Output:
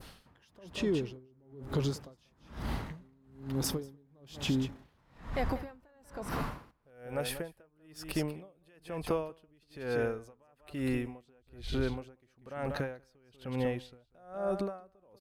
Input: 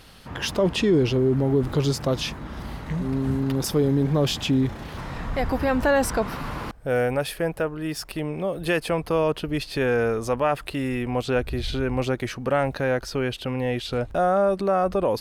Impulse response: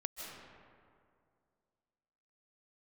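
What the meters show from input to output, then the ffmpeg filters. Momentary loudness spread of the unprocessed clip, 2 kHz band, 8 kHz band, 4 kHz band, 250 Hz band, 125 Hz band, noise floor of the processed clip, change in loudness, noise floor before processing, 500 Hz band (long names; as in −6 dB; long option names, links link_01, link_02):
10 LU, −14.0 dB, −10.0 dB, −12.5 dB, −12.0 dB, −12.5 dB, −70 dBFS, −12.0 dB, −41 dBFS, −14.5 dB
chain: -af "adynamicequalizer=threshold=0.01:dfrequency=3300:dqfactor=0.72:tfrequency=3300:tqfactor=0.72:attack=5:release=100:ratio=0.375:range=2:mode=cutabove:tftype=bell,acompressor=threshold=-27dB:ratio=6,aecho=1:1:192:0.299,aeval=exprs='val(0)*pow(10,-35*(0.5-0.5*cos(2*PI*1.1*n/s))/20)':channel_layout=same"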